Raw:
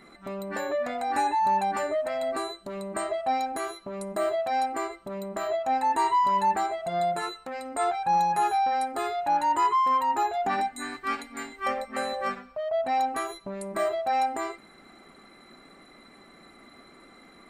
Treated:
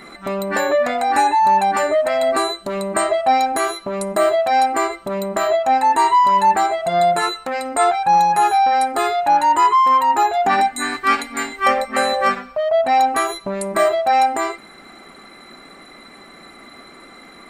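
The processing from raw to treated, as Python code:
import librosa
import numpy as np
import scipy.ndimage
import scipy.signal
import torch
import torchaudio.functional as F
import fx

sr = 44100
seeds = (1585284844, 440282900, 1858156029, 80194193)

p1 = fx.low_shelf(x, sr, hz=490.0, db=-4.5)
p2 = fx.rider(p1, sr, range_db=4, speed_s=0.5)
p3 = p1 + (p2 * 10.0 ** (0.0 / 20.0))
y = p3 * 10.0 ** (6.0 / 20.0)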